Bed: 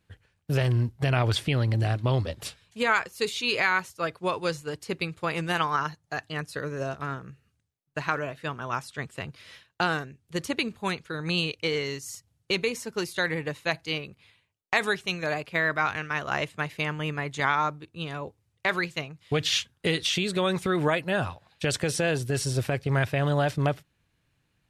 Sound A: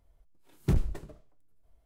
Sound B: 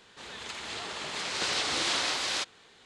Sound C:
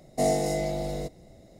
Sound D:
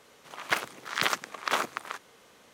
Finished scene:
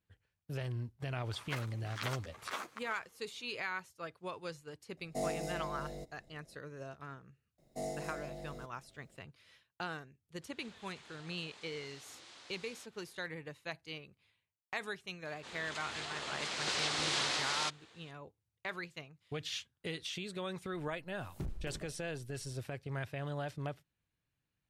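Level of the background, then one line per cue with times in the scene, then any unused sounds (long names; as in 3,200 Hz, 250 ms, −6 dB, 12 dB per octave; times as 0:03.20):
bed −15 dB
0:01.00: mix in D −10.5 dB + string-ensemble chorus
0:04.97: mix in C −12.5 dB
0:07.58: mix in C −16 dB + bit reduction 11 bits
0:10.42: mix in B −10 dB + downward compressor, threshold −44 dBFS
0:15.26: mix in B −5 dB + high-pass filter 45 Hz
0:20.72: mix in A −0.5 dB + downward compressor 5 to 1, threshold −38 dBFS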